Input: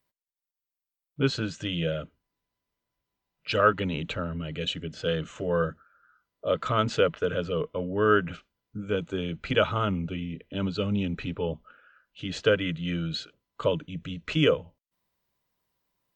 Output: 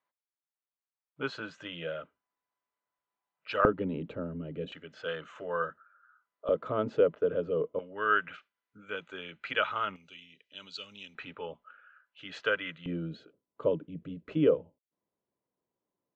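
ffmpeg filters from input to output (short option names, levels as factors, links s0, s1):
-af "asetnsamples=n=441:p=0,asendcmd='3.65 bandpass f 340;4.72 bandpass f 1200;6.49 bandpass f 420;7.79 bandpass f 1700;9.96 bandpass f 5400;11.15 bandpass f 1400;12.86 bandpass f 370',bandpass=f=1100:t=q:w=1.1:csg=0"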